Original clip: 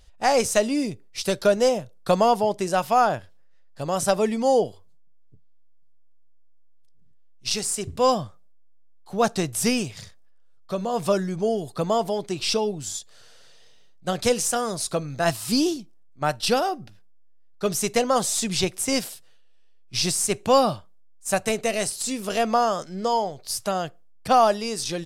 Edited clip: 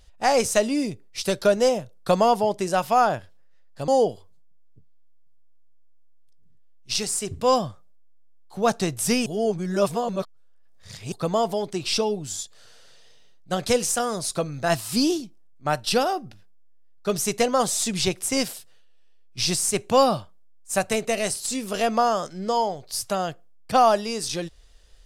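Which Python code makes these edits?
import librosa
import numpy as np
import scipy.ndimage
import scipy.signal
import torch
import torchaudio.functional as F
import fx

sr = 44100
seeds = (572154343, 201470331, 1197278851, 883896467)

y = fx.edit(x, sr, fx.cut(start_s=3.88, length_s=0.56),
    fx.reverse_span(start_s=9.82, length_s=1.86), tone=tone)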